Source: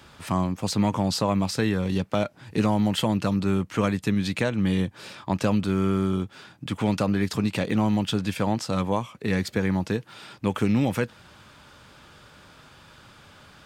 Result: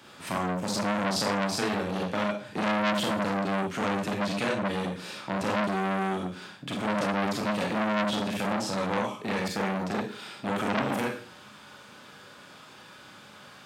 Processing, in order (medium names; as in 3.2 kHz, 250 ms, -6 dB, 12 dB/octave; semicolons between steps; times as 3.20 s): high-pass 160 Hz 12 dB/octave; Schroeder reverb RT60 0.44 s, combs from 30 ms, DRR -2 dB; transformer saturation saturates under 2 kHz; trim -2 dB